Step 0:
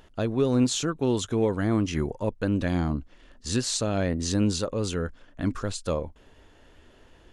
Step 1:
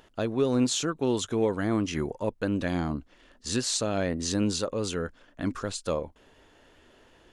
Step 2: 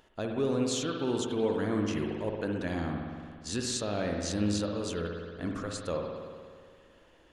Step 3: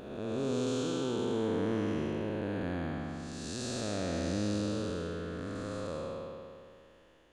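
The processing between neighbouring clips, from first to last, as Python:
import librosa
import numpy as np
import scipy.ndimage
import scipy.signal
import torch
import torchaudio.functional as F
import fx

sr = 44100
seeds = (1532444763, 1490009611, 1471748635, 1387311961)

y1 = fx.low_shelf(x, sr, hz=130.0, db=-10.0)
y2 = fx.rev_spring(y1, sr, rt60_s=1.9, pass_ms=(58,), chirp_ms=45, drr_db=1.5)
y2 = y2 * 10.0 ** (-5.5 / 20.0)
y3 = fx.spec_blur(y2, sr, span_ms=480.0)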